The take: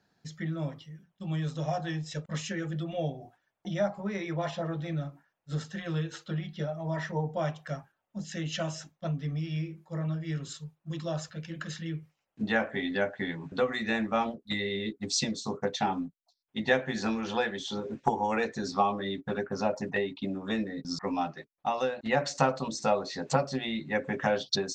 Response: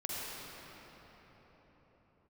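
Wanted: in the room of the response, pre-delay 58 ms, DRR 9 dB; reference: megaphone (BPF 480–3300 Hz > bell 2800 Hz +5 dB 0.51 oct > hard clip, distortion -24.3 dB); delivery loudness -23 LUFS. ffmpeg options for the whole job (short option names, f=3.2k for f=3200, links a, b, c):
-filter_complex "[0:a]asplit=2[a][b];[1:a]atrim=start_sample=2205,adelay=58[c];[b][c]afir=irnorm=-1:irlink=0,volume=-13dB[d];[a][d]amix=inputs=2:normalize=0,highpass=480,lowpass=3.3k,equalizer=f=2.8k:t=o:w=0.51:g=5,asoftclip=type=hard:threshold=-17dB,volume=11.5dB"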